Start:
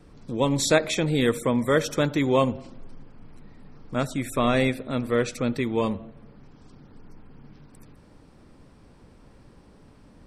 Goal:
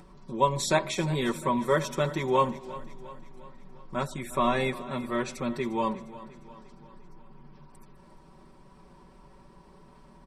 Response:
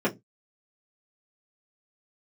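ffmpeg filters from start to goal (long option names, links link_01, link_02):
-filter_complex "[0:a]equalizer=frequency=1000:width_type=o:width=0.32:gain=12,aecho=1:1:5.3:0.92,acompressor=mode=upward:threshold=-39dB:ratio=2.5,aecho=1:1:353|706|1059|1412|1765:0.141|0.0763|0.0412|0.0222|0.012,asplit=2[link_01][link_02];[1:a]atrim=start_sample=2205[link_03];[link_02][link_03]afir=irnorm=-1:irlink=0,volume=-29dB[link_04];[link_01][link_04]amix=inputs=2:normalize=0,volume=-8dB"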